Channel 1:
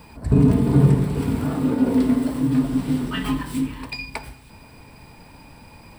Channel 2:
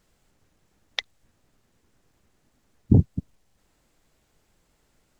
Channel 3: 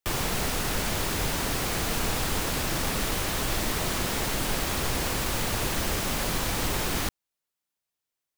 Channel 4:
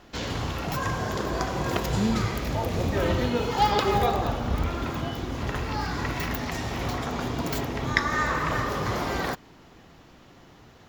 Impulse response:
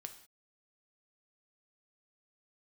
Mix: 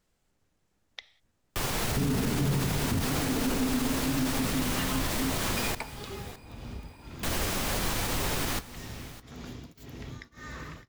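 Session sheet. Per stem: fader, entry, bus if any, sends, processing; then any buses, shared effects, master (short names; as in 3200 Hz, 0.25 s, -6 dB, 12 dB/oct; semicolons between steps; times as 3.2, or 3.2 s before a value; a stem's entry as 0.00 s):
-6.5 dB, 1.65 s, no send, no echo send, dry
-9.5 dB, 0.00 s, send -6 dB, no echo send, dry
+3.0 dB, 1.50 s, muted 5.75–7.23, no send, echo send -17.5 dB, flange 0.44 Hz, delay 7 ms, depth 5.3 ms, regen -64%
-7.0 dB, 2.25 s, no send, echo send -16.5 dB, bell 870 Hz -11.5 dB 2 oct; compressor 5:1, threshold -29 dBFS, peak gain reduction 9 dB; beating tremolo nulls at 1.8 Hz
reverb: on, pre-delay 3 ms
echo: echo 0.61 s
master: limiter -19 dBFS, peak gain reduction 10 dB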